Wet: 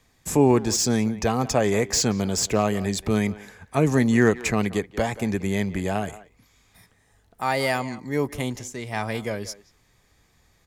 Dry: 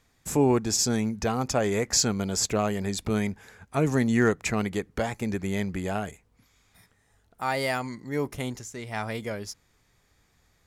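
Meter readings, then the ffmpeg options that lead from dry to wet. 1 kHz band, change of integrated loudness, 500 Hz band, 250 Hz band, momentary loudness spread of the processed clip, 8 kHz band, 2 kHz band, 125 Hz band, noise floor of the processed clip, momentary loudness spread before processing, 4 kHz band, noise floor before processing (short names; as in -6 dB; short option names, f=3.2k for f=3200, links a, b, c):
+3.5 dB, +3.5 dB, +4.0 dB, +4.0 dB, 11 LU, +1.5 dB, +3.5 dB, +4.0 dB, -63 dBFS, 12 LU, +2.0 dB, -67 dBFS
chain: -filter_complex "[0:a]bandreject=f=1.4k:w=11,acrossover=split=110|2200[a][b][c];[c]asoftclip=type=tanh:threshold=-21.5dB[d];[a][b][d]amix=inputs=3:normalize=0,asplit=2[e][f];[f]adelay=180,highpass=300,lowpass=3.4k,asoftclip=type=hard:threshold=-18.5dB,volume=-16dB[g];[e][g]amix=inputs=2:normalize=0,volume=4dB"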